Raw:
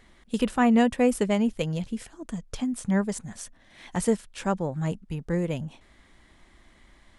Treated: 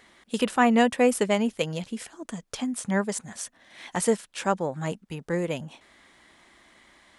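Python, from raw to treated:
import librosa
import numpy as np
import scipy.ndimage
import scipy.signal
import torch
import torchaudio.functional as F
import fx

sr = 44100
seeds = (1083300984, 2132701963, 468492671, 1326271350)

y = fx.highpass(x, sr, hz=420.0, slope=6)
y = F.gain(torch.from_numpy(y), 4.5).numpy()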